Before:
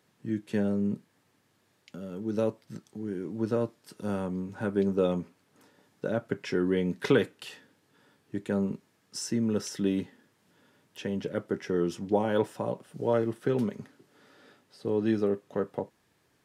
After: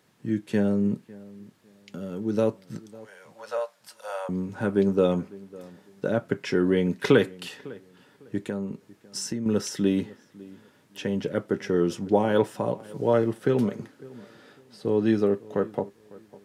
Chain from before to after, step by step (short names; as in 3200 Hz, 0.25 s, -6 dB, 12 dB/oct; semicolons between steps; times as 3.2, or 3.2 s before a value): 2.87–4.29 steep high-pass 520 Hz 72 dB/oct; 8.46–9.46 compressor 4:1, threshold -33 dBFS, peak gain reduction 8.5 dB; darkening echo 0.552 s, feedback 25%, low-pass 2000 Hz, level -21 dB; gain +4.5 dB